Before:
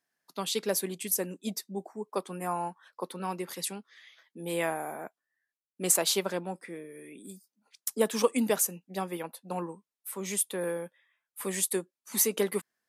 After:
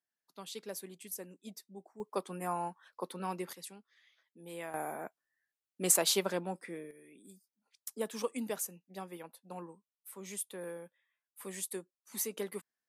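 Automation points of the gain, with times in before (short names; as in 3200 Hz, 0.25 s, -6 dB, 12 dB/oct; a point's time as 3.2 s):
-13.5 dB
from 2 s -3.5 dB
from 3.53 s -13 dB
from 4.74 s -2 dB
from 6.91 s -10.5 dB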